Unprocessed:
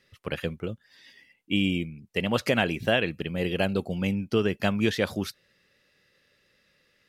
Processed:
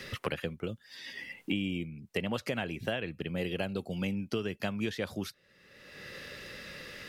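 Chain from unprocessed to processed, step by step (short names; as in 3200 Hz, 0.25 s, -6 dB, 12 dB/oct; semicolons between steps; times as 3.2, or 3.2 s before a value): three-band squash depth 100%; gain -8 dB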